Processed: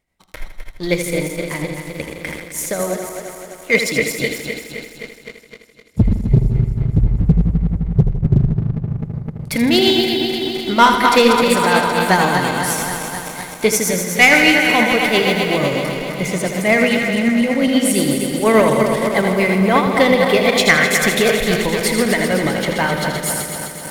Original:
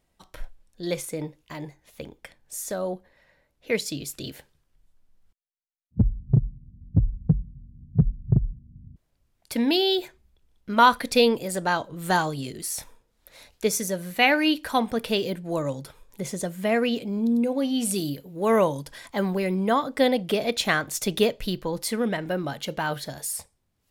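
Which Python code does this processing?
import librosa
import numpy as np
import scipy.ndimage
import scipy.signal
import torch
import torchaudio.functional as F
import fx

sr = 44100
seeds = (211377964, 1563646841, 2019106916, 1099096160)

p1 = fx.reverse_delay_fb(x, sr, ms=129, feedback_pct=83, wet_db=-7.0)
p2 = fx.peak_eq(p1, sr, hz=2100.0, db=12.0, octaves=0.26)
p3 = fx.leveller(p2, sr, passes=2)
p4 = p3 * (1.0 - 0.4 / 2.0 + 0.4 / 2.0 * np.cos(2.0 * np.pi * 8.5 * (np.arange(len(p3)) / sr)))
p5 = p4 + fx.echo_feedback(p4, sr, ms=80, feedback_pct=55, wet_db=-8.5, dry=0)
p6 = fx.sustainer(p5, sr, db_per_s=46.0, at=(2.15, 2.69))
y = p6 * 10.0 ** (1.5 / 20.0)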